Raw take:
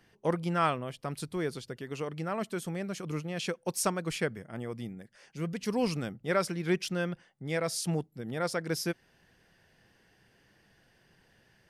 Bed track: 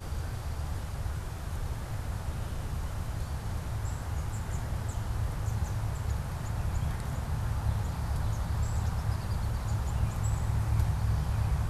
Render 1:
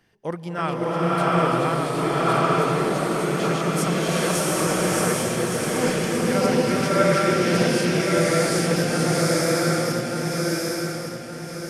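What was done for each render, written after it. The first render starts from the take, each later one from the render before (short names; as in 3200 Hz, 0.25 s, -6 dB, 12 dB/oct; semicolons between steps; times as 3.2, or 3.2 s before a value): regenerating reverse delay 0.584 s, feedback 62%, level 0 dB; bloom reverb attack 0.79 s, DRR -8 dB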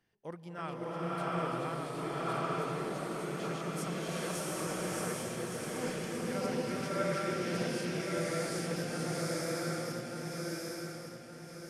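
gain -14.5 dB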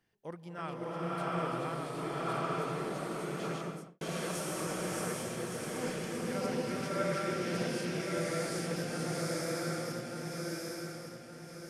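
3.55–4.01 studio fade out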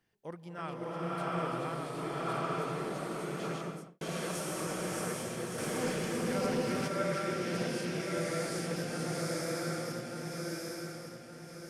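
5.58–6.88 sample leveller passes 1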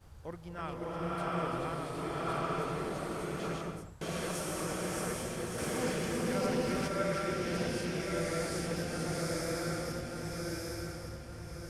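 add bed track -18.5 dB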